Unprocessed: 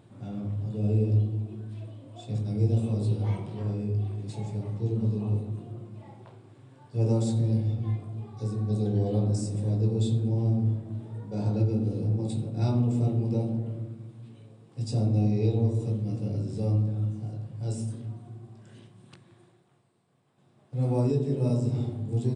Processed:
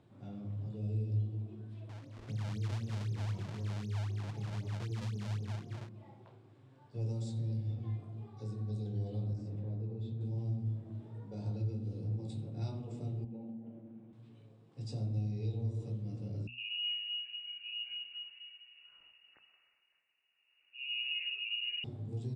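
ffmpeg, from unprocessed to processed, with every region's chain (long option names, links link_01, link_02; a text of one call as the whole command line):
ffmpeg -i in.wav -filter_complex "[0:a]asettb=1/sr,asplit=3[link_01][link_02][link_03];[link_01]atrim=end=1.894[link_04];[link_02]atrim=start=1.89:end=5.89,asetpts=PTS-STARTPTS,afade=type=in:duration=0.004:curve=qsin,afade=type=out:start_time=3.996:duration=0.004:curve=qsin,lowshelf=frequency=200:gain=7,acompressor=threshold=-25dB:ratio=3:attack=3.2:release=140:knee=1:detection=peak,acrusher=samples=34:mix=1:aa=0.000001:lfo=1:lforange=54.4:lforate=3.9[link_05];[link_03]atrim=start=5.886[link_06];[link_04][link_05]acrossfade=duration=0.004:curve1=hsin:curve2=qsin[link_07];[link_07][link_06]acrossfade=duration=0.004:curve1=qsin:curve2=hsin,asettb=1/sr,asplit=3[link_08][link_09][link_10];[link_08]atrim=end=9.334[link_11];[link_09]atrim=start=9.33:end=10.21,asetpts=PTS-STARTPTS,afade=type=in:duration=0.004:curve=qsin,afade=type=out:start_time=0.876:duration=0.004:curve=qsin,lowpass=2500,acompressor=threshold=-27dB:ratio=2.5:attack=3.2:release=140:knee=1:detection=peak[link_12];[link_10]atrim=start=10.206[link_13];[link_11][link_12]acrossfade=duration=0.004:curve1=hsin:curve2=qsin[link_14];[link_14][link_13]acrossfade=duration=0.004:curve1=qsin:curve2=hsin,asettb=1/sr,asplit=3[link_15][link_16][link_17];[link_15]atrim=end=13.244[link_18];[link_16]atrim=start=13.24:end=14.13,asetpts=PTS-STARTPTS,afade=type=in:duration=0.004:curve=qsin,afade=type=out:start_time=0.886:duration=0.004:curve=qsin,bandreject=frequency=700:width=18,acompressor=threshold=-40dB:ratio=2:attack=3.2:release=140:knee=1:detection=peak,highpass=190,equalizer=frequency=230:width_type=q:width=4:gain=10,equalizer=frequency=750:width_type=q:width=4:gain=8,equalizer=frequency=1200:width_type=q:width=4:gain=-6,equalizer=frequency=2100:width_type=q:width=4:gain=-3,lowpass=frequency=2800:width=0.5412,lowpass=frequency=2800:width=1.3066[link_19];[link_17]atrim=start=14.126[link_20];[link_18][link_19]acrossfade=duration=0.004:curve1=hsin:curve2=qsin[link_21];[link_21][link_20]acrossfade=duration=0.004:curve1=qsin:curve2=hsin,asettb=1/sr,asplit=3[link_22][link_23][link_24];[link_22]atrim=end=16.474[link_25];[link_23]atrim=start=16.47:end=21.84,asetpts=PTS-STARTPTS,afade=type=in:duration=0.004:curve=qsin,afade=type=out:start_time=5.366:duration=0.004:curve=qsin,acrossover=split=180|610[link_26][link_27][link_28];[link_26]adelay=100[link_29];[link_28]adelay=230[link_30];[link_29][link_27][link_30]amix=inputs=3:normalize=0,atrim=end_sample=236817,lowpass=frequency=2600:width_type=q:width=0.5098,lowpass=frequency=2600:width_type=q:width=0.6013,lowpass=frequency=2600:width_type=q:width=0.9,lowpass=frequency=2600:width_type=q:width=2.563,afreqshift=-3000[link_31];[link_24]atrim=start=21.836[link_32];[link_25][link_31]acrossfade=duration=0.004:curve1=hsin:curve2=qsin[link_33];[link_33][link_32]acrossfade=duration=0.004:curve1=qsin:curve2=hsin,lowpass=6000,bandreject=frequency=60:width_type=h:width=6,bandreject=frequency=120:width_type=h:width=6,bandreject=frequency=180:width_type=h:width=6,bandreject=frequency=240:width_type=h:width=6,acrossover=split=140|3000[link_34][link_35][link_36];[link_35]acompressor=threshold=-36dB:ratio=6[link_37];[link_34][link_37][link_36]amix=inputs=3:normalize=0,volume=-8dB" out.wav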